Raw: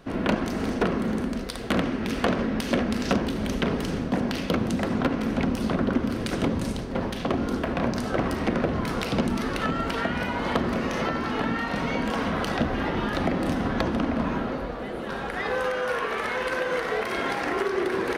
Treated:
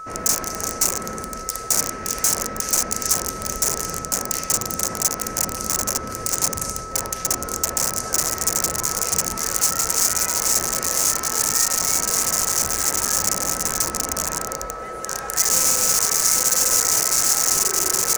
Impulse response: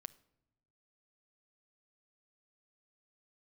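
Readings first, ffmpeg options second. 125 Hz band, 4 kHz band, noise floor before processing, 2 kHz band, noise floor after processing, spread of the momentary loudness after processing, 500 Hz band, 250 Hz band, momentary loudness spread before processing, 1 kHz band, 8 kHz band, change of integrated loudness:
-5.5 dB, +10.0 dB, -32 dBFS, -1.0 dB, -32 dBFS, 9 LU, -4.0 dB, -10.5 dB, 3 LU, +1.5 dB, +29.5 dB, +7.5 dB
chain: -af "equalizer=f=250:t=o:w=1:g=-11,equalizer=f=500:t=o:w=1:g=4,equalizer=f=2k:t=o:w=1:g=6,aeval=exprs='(mod(10.6*val(0)+1,2)-1)/10.6':c=same,highshelf=f=4.7k:t=q:w=3:g=12,aeval=exprs='val(0)+0.0282*sin(2*PI*1300*n/s)':c=same,volume=-1.5dB"

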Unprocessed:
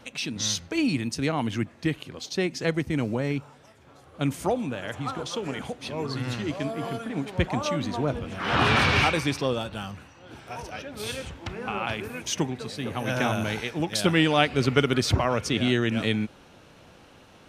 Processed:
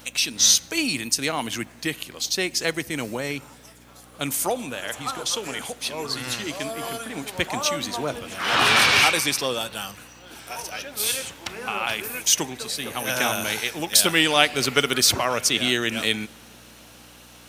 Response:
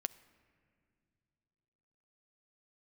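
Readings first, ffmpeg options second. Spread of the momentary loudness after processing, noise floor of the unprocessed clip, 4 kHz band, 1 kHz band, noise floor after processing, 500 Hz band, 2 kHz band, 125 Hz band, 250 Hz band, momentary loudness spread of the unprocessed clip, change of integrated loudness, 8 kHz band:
15 LU, -53 dBFS, +8.5 dB, +2.5 dB, -48 dBFS, -0.5 dB, +5.0 dB, -8.5 dB, -3.5 dB, 13 LU, +4.5 dB, +13.5 dB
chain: -filter_complex "[0:a]aeval=exprs='val(0)+0.00794*(sin(2*PI*60*n/s)+sin(2*PI*2*60*n/s)/2+sin(2*PI*3*60*n/s)/3+sin(2*PI*4*60*n/s)/4+sin(2*PI*5*60*n/s)/5)':c=same,aemphasis=mode=production:type=riaa,asplit=2[a][b];[1:a]atrim=start_sample=2205,asetrate=33516,aresample=44100[c];[b][c]afir=irnorm=-1:irlink=0,volume=-3.5dB[d];[a][d]amix=inputs=2:normalize=0,volume=-2dB"

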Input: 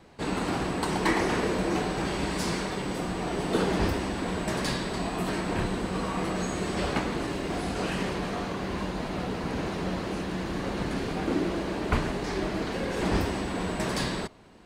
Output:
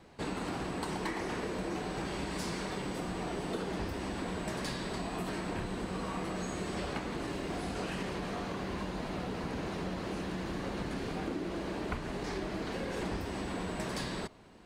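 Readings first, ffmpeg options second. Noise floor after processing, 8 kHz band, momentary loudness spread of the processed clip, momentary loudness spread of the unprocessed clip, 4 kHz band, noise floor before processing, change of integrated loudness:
-40 dBFS, -7.5 dB, 1 LU, 5 LU, -7.5 dB, -34 dBFS, -7.5 dB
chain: -af "acompressor=threshold=-30dB:ratio=6,volume=-3dB"

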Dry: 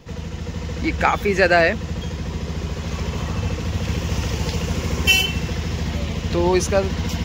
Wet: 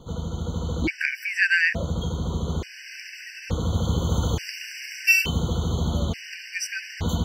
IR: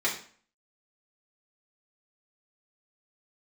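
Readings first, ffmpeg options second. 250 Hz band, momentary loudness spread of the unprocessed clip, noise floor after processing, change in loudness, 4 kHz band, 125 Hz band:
-5.5 dB, 12 LU, -42 dBFS, -3.5 dB, -8.0 dB, -3.0 dB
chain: -filter_complex "[0:a]asplit=2[a][b];[b]bandpass=f=560:t=q:w=6.7:csg=0[c];[1:a]atrim=start_sample=2205,adelay=94[d];[c][d]afir=irnorm=-1:irlink=0,volume=-16dB[e];[a][e]amix=inputs=2:normalize=0,afftfilt=real='re*gt(sin(2*PI*0.57*pts/sr)*(1-2*mod(floor(b*sr/1024/1500),2)),0)':imag='im*gt(sin(2*PI*0.57*pts/sr)*(1-2*mod(floor(b*sr/1024/1500),2)),0)':win_size=1024:overlap=0.75"

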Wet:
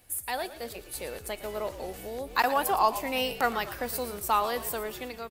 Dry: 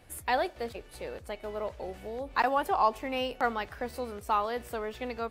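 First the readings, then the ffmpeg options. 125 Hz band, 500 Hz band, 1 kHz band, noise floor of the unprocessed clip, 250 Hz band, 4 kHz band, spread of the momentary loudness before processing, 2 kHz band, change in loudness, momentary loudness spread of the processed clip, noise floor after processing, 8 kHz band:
+1.0 dB, +0.5 dB, +1.5 dB, -52 dBFS, +0.5 dB, +5.5 dB, 12 LU, +2.5 dB, +2.0 dB, 12 LU, -47 dBFS, n/a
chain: -filter_complex "[0:a]aemphasis=mode=production:type=75fm,dynaudnorm=f=300:g=5:m=8.5dB,asplit=6[a][b][c][d][e][f];[b]adelay=114,afreqshift=-60,volume=-13.5dB[g];[c]adelay=228,afreqshift=-120,volume=-19.7dB[h];[d]adelay=342,afreqshift=-180,volume=-25.9dB[i];[e]adelay=456,afreqshift=-240,volume=-32.1dB[j];[f]adelay=570,afreqshift=-300,volume=-38.3dB[k];[a][g][h][i][j][k]amix=inputs=6:normalize=0,volume=-6dB"

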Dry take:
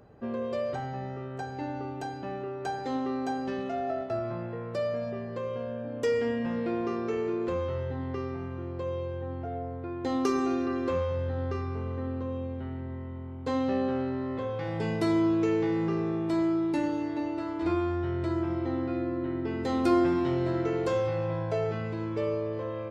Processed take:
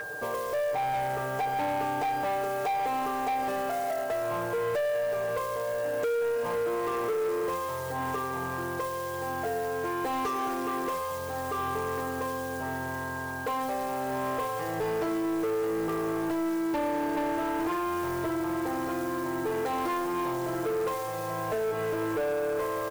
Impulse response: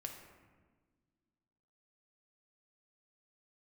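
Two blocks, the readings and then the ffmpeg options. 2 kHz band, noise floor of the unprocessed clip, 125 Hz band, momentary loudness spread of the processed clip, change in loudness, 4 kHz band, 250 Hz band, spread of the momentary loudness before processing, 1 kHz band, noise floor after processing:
+6.5 dB, -38 dBFS, -7.5 dB, 4 LU, +0.5 dB, +2.5 dB, -4.0 dB, 9 LU, +7.0 dB, -34 dBFS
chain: -filter_complex "[0:a]equalizer=f=125:t=o:w=1:g=-3,equalizer=f=250:t=o:w=1:g=-4,equalizer=f=500:t=o:w=1:g=10,equalizer=f=1k:t=o:w=1:g=7,equalizer=f=2k:t=o:w=1:g=-9,equalizer=f=4k:t=o:w=1:g=-9,aeval=exprs='val(0)+0.0126*sin(2*PI*1600*n/s)':c=same,acontrast=70,lowpass=5.3k,acompressor=threshold=-22dB:ratio=10,asplit=2[a][b];[1:a]atrim=start_sample=2205,afade=t=out:st=0.28:d=0.01,atrim=end_sample=12789[c];[b][c]afir=irnorm=-1:irlink=0,volume=-13dB[d];[a][d]amix=inputs=2:normalize=0,acrusher=bits=7:mode=log:mix=0:aa=0.000001,tiltshelf=f=830:g=-6.5,bandreject=f=1.5k:w=9,aecho=1:1:6.6:0.71,asoftclip=type=tanh:threshold=-25.5dB"

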